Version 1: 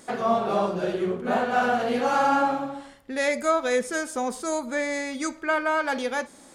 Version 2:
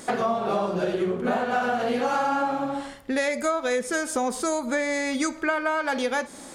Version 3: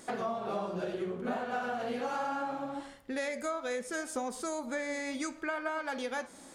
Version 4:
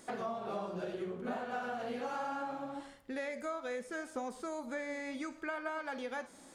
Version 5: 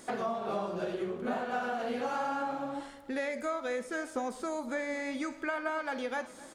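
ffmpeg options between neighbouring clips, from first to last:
ffmpeg -i in.wav -af "acompressor=threshold=-30dB:ratio=6,volume=8dB" out.wav
ffmpeg -i in.wav -af "flanger=delay=2.5:depth=9.2:regen=85:speed=0.7:shape=triangular,volume=-5.5dB" out.wav
ffmpeg -i in.wav -filter_complex "[0:a]acrossover=split=3300[link_01][link_02];[link_02]acompressor=threshold=-51dB:ratio=4:attack=1:release=60[link_03];[link_01][link_03]amix=inputs=2:normalize=0,volume=-4dB" out.wav
ffmpeg -i in.wav -af "bandreject=frequency=60:width_type=h:width=6,bandreject=frequency=120:width_type=h:width=6,bandreject=frequency=180:width_type=h:width=6,aecho=1:1:256|512|768|1024:0.1|0.052|0.027|0.0141,volume=5dB" out.wav

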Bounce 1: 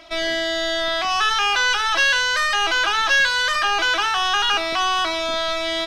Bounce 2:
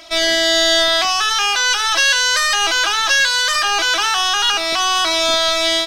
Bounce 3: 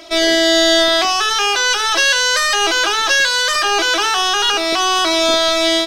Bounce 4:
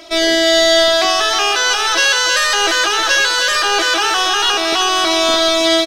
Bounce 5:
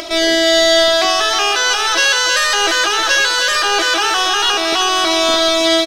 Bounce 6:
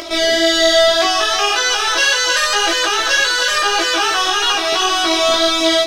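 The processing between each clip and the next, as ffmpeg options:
ffmpeg -i in.wav -af "bass=frequency=250:gain=-3,treble=frequency=4000:gain=11,dynaudnorm=framelen=120:gausssize=3:maxgain=6.5dB,alimiter=limit=-8.5dB:level=0:latency=1:release=459,volume=2.5dB" out.wav
ffmpeg -i in.wav -af "equalizer=frequency=390:width=1.3:gain=11" out.wav
ffmpeg -i in.wav -af "aecho=1:1:315|630|945|1260:0.422|0.16|0.0609|0.0231" out.wav
ffmpeg -i in.wav -af "acompressor=mode=upward:threshold=-19dB:ratio=2.5" out.wav
ffmpeg -i in.wav -af "flanger=delay=17.5:depth=2.4:speed=1.8,volume=2dB" out.wav

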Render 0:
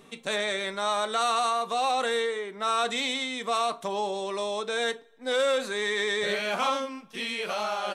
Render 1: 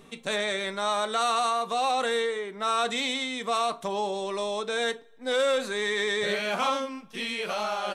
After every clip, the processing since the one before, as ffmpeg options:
ffmpeg -i in.wav -af "lowshelf=frequency=110:gain=9" out.wav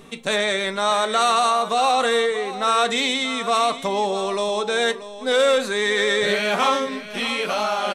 ffmpeg -i in.wav -af "aecho=1:1:634:0.211,volume=7dB" out.wav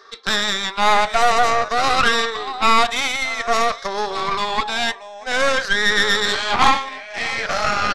ffmpeg -i in.wav -af "afftfilt=real='re*pow(10,11/40*sin(2*PI*(0.58*log(max(b,1)*sr/1024/100)/log(2)-(-0.51)*(pts-256)/sr)))':imag='im*pow(10,11/40*sin(2*PI*(0.58*log(max(b,1)*sr/1024/100)/log(2)-(-0.51)*(pts-256)/sr)))':win_size=1024:overlap=0.75,highpass=frequency=460:width=0.5412,highpass=frequency=460:width=1.3066,equalizer=frequency=510:width_type=q:width=4:gain=-9,equalizer=frequency=810:width_type=q:width=4:gain=4,equalizer=frequency=1200:width_type=q:width=4:gain=5,equalizer=frequency=1700:width_type=q:width=4:gain=7,equalizer=frequency=2700:width_type=q:width=4:gain=-7,equalizer=frequency=5000:width_type=q:width=4:gain=9,lowpass=frequency=6000:width=0.5412,lowpass=frequency=6000:width=1.3066,aeval=exprs='0.794*(cos(1*acos(clip(val(0)/0.794,-1,1)))-cos(1*PI/2))+0.158*(cos(6*acos(clip(val(0)/0.794,-1,1)))-cos(6*PI/2))':channel_layout=same,volume=-1dB" out.wav

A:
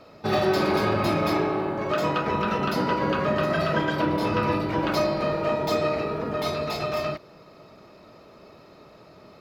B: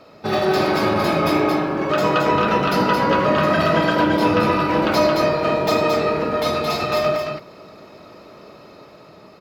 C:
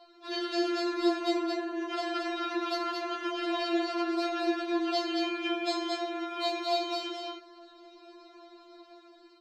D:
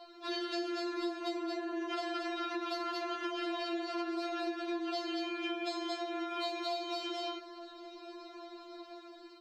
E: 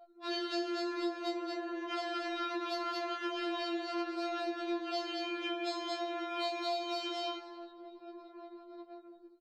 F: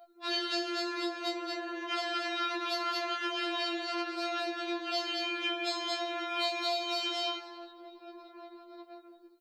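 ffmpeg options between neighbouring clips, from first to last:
ffmpeg -i in.wav -filter_complex "[0:a]lowshelf=frequency=78:gain=-8.5,dynaudnorm=framelen=540:gausssize=5:maxgain=3dB,asplit=2[link_01][link_02];[link_02]aecho=0:1:78.72|221.6:0.251|0.631[link_03];[link_01][link_03]amix=inputs=2:normalize=0,volume=3dB" out.wav
ffmpeg -i in.wav -af "lowpass=frequency=8100:width=0.5412,lowpass=frequency=8100:width=1.3066,afftfilt=real='re*4*eq(mod(b,16),0)':imag='im*4*eq(mod(b,16),0)':win_size=2048:overlap=0.75,volume=-6.5dB" out.wav
ffmpeg -i in.wav -af "acompressor=threshold=-38dB:ratio=6,volume=3.5dB" out.wav
ffmpeg -i in.wav -filter_complex "[0:a]asplit=6[link_01][link_02][link_03][link_04][link_05][link_06];[link_02]adelay=179,afreqshift=42,volume=-4.5dB[link_07];[link_03]adelay=358,afreqshift=84,volume=-13.1dB[link_08];[link_04]adelay=537,afreqshift=126,volume=-21.8dB[link_09];[link_05]adelay=716,afreqshift=168,volume=-30.4dB[link_10];[link_06]adelay=895,afreqshift=210,volume=-39dB[link_11];[link_01][link_07][link_08][link_09][link_10][link_11]amix=inputs=6:normalize=0,anlmdn=0.0398,afftfilt=real='re*2.83*eq(mod(b,8),0)':imag='im*2.83*eq(mod(b,8),0)':win_size=2048:overlap=0.75,volume=-5dB" out.wav
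ffmpeg -i in.wav -af "bass=frequency=250:gain=-6,treble=frequency=4000:gain=-10,crystalizer=i=6.5:c=0" out.wav

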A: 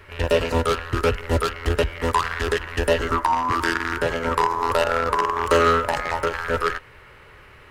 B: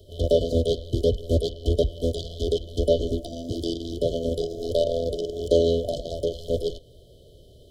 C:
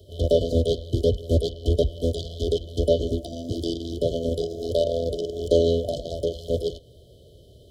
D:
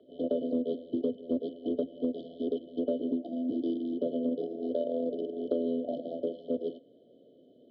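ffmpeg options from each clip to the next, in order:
ffmpeg -i in.wav -filter_complex "[0:a]afftfilt=real='re*(1-between(b*sr/4096,720,3000))':imag='im*(1-between(b*sr/4096,720,3000))':win_size=4096:overlap=0.75,acrossover=split=110|5300[link_01][link_02][link_03];[link_03]acompressor=threshold=-52dB:ratio=5[link_04];[link_01][link_02][link_04]amix=inputs=3:normalize=0" out.wav
ffmpeg -i in.wav -af "highpass=59,lowshelf=frequency=120:gain=4.5" out.wav
ffmpeg -i in.wav -af "highpass=frequency=240:width=0.5412,highpass=frequency=240:width=1.3066,equalizer=frequency=260:width_type=q:width=4:gain=9,equalizer=frequency=400:width_type=q:width=4:gain=-7,equalizer=frequency=620:width_type=q:width=4:gain=-6,equalizer=frequency=1200:width_type=q:width=4:gain=5,lowpass=frequency=2100:width=0.5412,lowpass=frequency=2100:width=1.3066,acompressor=threshold=-25dB:ratio=6,volume=-1dB" out.wav

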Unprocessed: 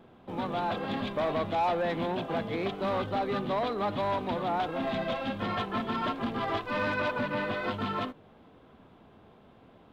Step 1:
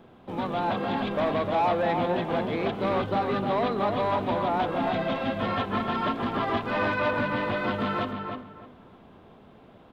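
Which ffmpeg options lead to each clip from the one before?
ffmpeg -i in.wav -filter_complex "[0:a]acrossover=split=4000[link_01][link_02];[link_02]acompressor=threshold=-55dB:ratio=4:attack=1:release=60[link_03];[link_01][link_03]amix=inputs=2:normalize=0,asplit=2[link_04][link_05];[link_05]adelay=305,lowpass=frequency=2400:poles=1,volume=-4.5dB,asplit=2[link_06][link_07];[link_07]adelay=305,lowpass=frequency=2400:poles=1,volume=0.25,asplit=2[link_08][link_09];[link_09]adelay=305,lowpass=frequency=2400:poles=1,volume=0.25[link_10];[link_04][link_06][link_08][link_10]amix=inputs=4:normalize=0,volume=3dB" out.wav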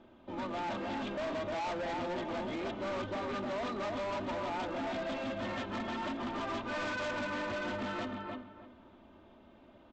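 ffmpeg -i in.wav -af "aecho=1:1:3.3:0.64,aresample=16000,asoftclip=type=hard:threshold=-26.5dB,aresample=44100,volume=-7.5dB" out.wav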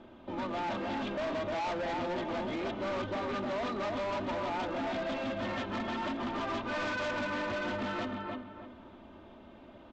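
ffmpeg -i in.wav -filter_complex "[0:a]lowpass=7200,asplit=2[link_01][link_02];[link_02]acompressor=threshold=-47dB:ratio=6,volume=-0.5dB[link_03];[link_01][link_03]amix=inputs=2:normalize=0" out.wav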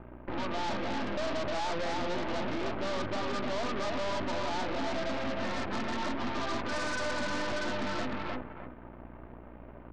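ffmpeg -i in.wav -af "asuperstop=centerf=5500:order=8:qfactor=0.61,aeval=exprs='val(0)+0.00282*(sin(2*PI*60*n/s)+sin(2*PI*2*60*n/s)/2+sin(2*PI*3*60*n/s)/3+sin(2*PI*4*60*n/s)/4+sin(2*PI*5*60*n/s)/5)':channel_layout=same,aeval=exprs='0.0398*(cos(1*acos(clip(val(0)/0.0398,-1,1)))-cos(1*PI/2))+0.0126*(cos(6*acos(clip(val(0)/0.0398,-1,1)))-cos(6*PI/2))':channel_layout=same" out.wav

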